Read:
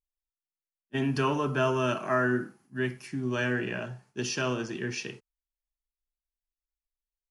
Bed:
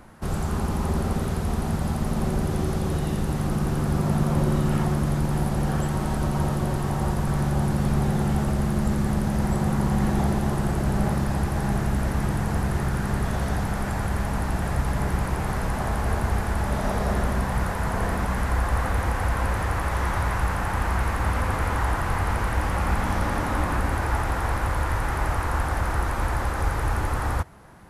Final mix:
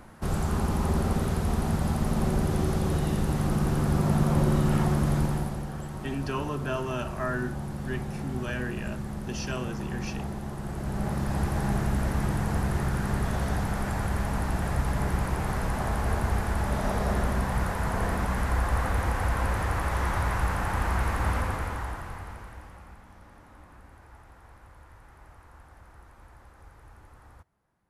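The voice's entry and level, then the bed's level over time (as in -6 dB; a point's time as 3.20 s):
5.10 s, -5.0 dB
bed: 5.22 s -1 dB
5.69 s -11.5 dB
10.56 s -11.5 dB
11.43 s -2.5 dB
21.34 s -2.5 dB
23.05 s -27 dB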